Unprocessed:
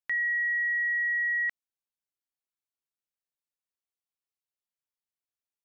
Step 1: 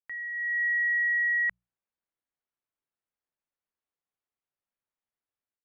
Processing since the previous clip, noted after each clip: LPF 2000 Hz 12 dB/oct; notches 60/120/180 Hz; AGC gain up to 11.5 dB; gain -7 dB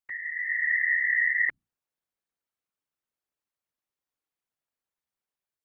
whisperiser; gain +1 dB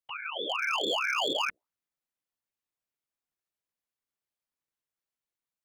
overloaded stage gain 22.5 dB; ring modulator with a swept carrier 930 Hz, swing 65%, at 2.3 Hz

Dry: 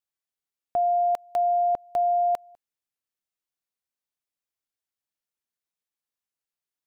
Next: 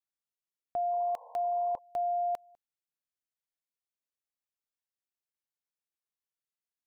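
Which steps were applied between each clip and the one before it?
painted sound noise, 0.91–1.79, 460–1100 Hz -46 dBFS; gain -8 dB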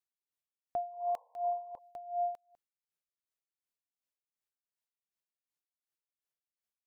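dB-linear tremolo 2.7 Hz, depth 18 dB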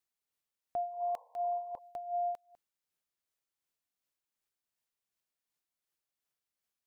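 limiter -33 dBFS, peak gain reduction 6.5 dB; gain +4 dB

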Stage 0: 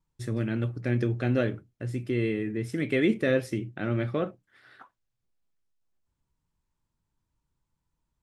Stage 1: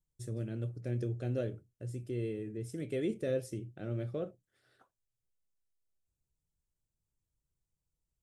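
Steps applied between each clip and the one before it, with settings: ten-band EQ 250 Hz -7 dB, 500 Hz +3 dB, 1000 Hz -11 dB, 2000 Hz -11 dB, 4000 Hz -5 dB, 8000 Hz +5 dB; gain -6 dB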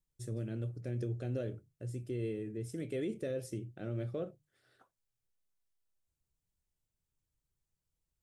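notches 50/100/150 Hz; limiter -28.5 dBFS, peak gain reduction 6 dB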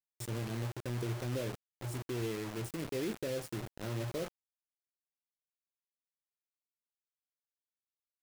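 bit-crush 7-bit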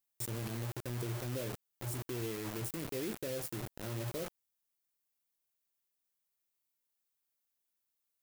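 high shelf 9700 Hz +11.5 dB; limiter -33 dBFS, peak gain reduction 7.5 dB; gain +4 dB

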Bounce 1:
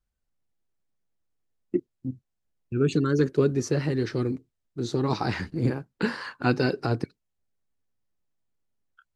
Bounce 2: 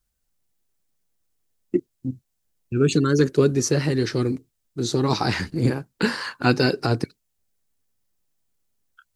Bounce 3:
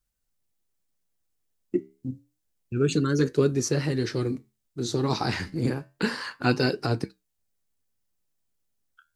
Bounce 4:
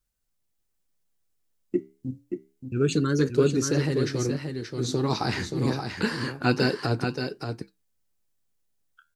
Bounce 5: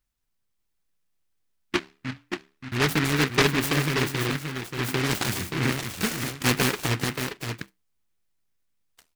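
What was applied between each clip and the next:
high shelf 4500 Hz +11.5 dB; gain +4 dB
flange 0.29 Hz, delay 6.7 ms, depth 7.9 ms, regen -77%
echo 0.578 s -6.5 dB
noise-modulated delay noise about 1700 Hz, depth 0.36 ms

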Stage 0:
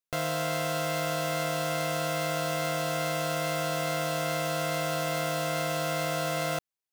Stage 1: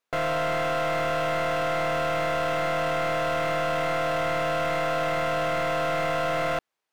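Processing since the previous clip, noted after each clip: overdrive pedal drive 24 dB, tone 1100 Hz, clips at -19 dBFS; gain +1.5 dB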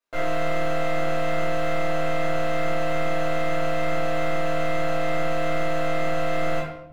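shoebox room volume 180 m³, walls mixed, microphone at 2.6 m; gain -9 dB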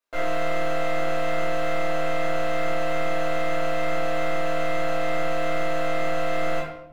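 bell 110 Hz -7 dB 1.6 oct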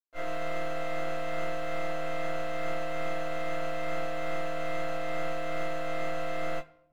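upward expander 2.5:1, over -30 dBFS; gain -6.5 dB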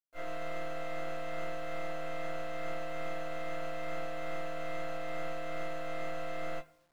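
bit-crush 11-bit; gain -5.5 dB

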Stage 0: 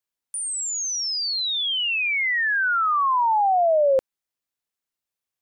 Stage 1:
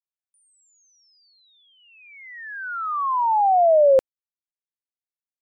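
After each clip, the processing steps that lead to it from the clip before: gate -20 dBFS, range -38 dB; gain +4 dB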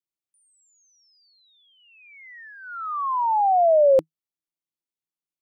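thirty-one-band EQ 160 Hz +11 dB, 315 Hz +11 dB, 1600 Hz -9 dB; gain -1.5 dB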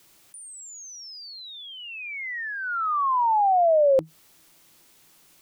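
fast leveller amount 50%; gain -3 dB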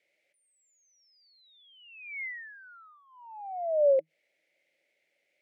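double band-pass 1100 Hz, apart 1.9 oct; gain -2.5 dB

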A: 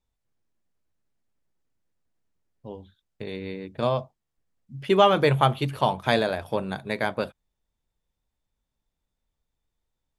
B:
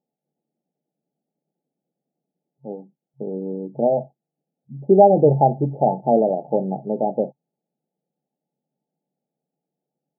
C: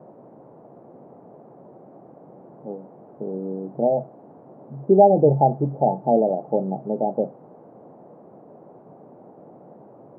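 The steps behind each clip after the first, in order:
FFT band-pass 130–880 Hz; gain +7 dB
band noise 130–740 Hz -45 dBFS; gain -1.5 dB

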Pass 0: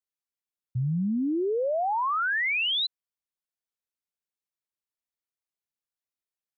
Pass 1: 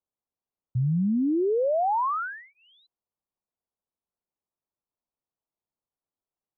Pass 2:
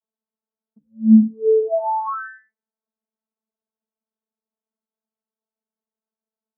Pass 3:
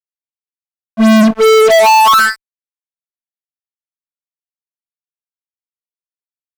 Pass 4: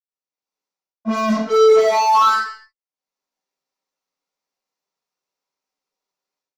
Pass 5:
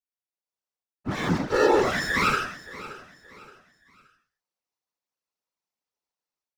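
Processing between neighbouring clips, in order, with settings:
inverse Chebyshev low-pass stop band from 2200 Hz, stop band 40 dB; in parallel at +1.5 dB: limiter -33.5 dBFS, peak gain reduction 10 dB
wow and flutter 87 cents; vocoder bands 32, saw 220 Hz; steep low-pass 1700 Hz 96 dB/oct; gain +8 dB
fuzz box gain 36 dB, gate -39 dBFS; gain +7.5 dB
reverb, pre-delay 77 ms; AGC gain up to 15 dB; gain -4.5 dB
minimum comb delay 4 ms; whisperiser; feedback echo 0.573 s, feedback 35%, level -17 dB; gain -6 dB

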